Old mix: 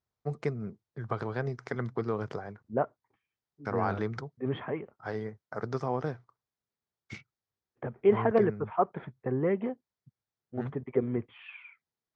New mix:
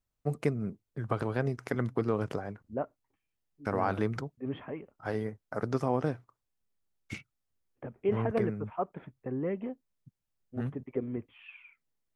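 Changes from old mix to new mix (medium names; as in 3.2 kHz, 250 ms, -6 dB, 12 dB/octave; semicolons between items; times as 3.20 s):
second voice -8.0 dB; master: remove cabinet simulation 100–6100 Hz, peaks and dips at 180 Hz -4 dB, 280 Hz -8 dB, 570 Hz -4 dB, 2.7 kHz -7 dB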